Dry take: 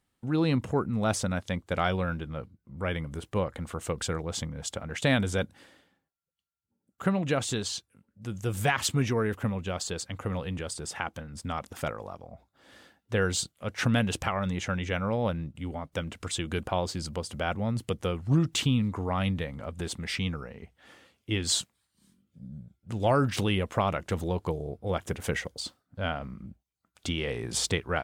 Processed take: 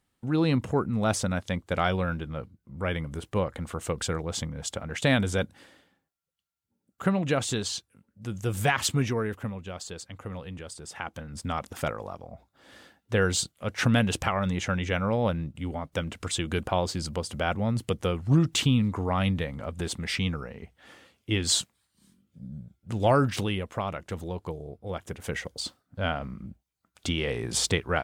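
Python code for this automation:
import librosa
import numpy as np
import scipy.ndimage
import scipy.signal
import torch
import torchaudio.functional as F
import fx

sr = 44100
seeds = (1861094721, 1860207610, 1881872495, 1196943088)

y = fx.gain(x, sr, db=fx.line((8.92, 1.5), (9.61, -5.5), (10.85, -5.5), (11.32, 2.5), (23.15, 2.5), (23.67, -4.5), (25.2, -4.5), (25.62, 2.5)))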